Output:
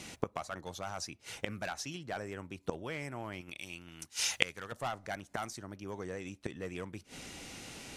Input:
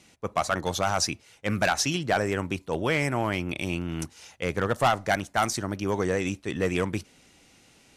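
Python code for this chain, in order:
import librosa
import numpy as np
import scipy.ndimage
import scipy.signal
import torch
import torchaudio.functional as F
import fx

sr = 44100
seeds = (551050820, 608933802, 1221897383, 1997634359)

y = fx.tilt_shelf(x, sr, db=-7.5, hz=1300.0, at=(3.41, 4.72))
y = fx.gate_flip(y, sr, shuts_db=-26.0, range_db=-25)
y = y * librosa.db_to_amplitude(10.0)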